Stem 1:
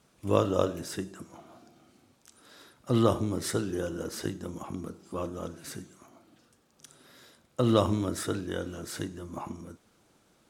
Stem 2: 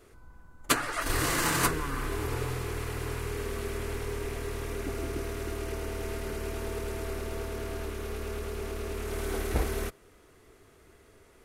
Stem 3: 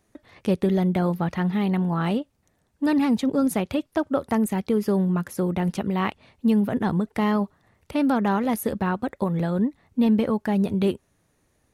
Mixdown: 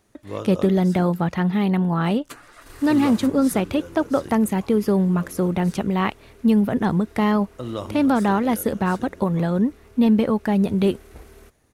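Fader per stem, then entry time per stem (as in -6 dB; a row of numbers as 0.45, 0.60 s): -6.5, -15.0, +3.0 dB; 0.00, 1.60, 0.00 s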